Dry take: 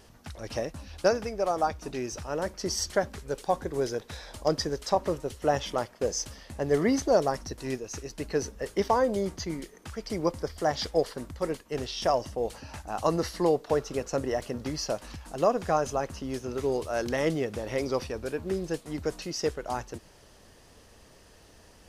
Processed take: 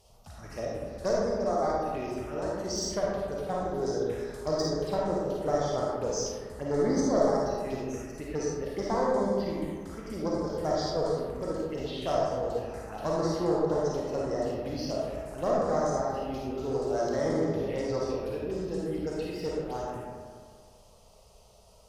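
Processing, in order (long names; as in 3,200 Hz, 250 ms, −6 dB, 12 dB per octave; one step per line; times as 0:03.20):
asymmetric clip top −24.5 dBFS
phaser swept by the level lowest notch 260 Hz, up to 2,700 Hz, full sweep at −26.5 dBFS
on a send: bucket-brigade delay 198 ms, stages 4,096, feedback 50%, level −12 dB
on the sum: comb and all-pass reverb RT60 1.4 s, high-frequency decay 0.45×, pre-delay 10 ms, DRR −4.5 dB
level −5.5 dB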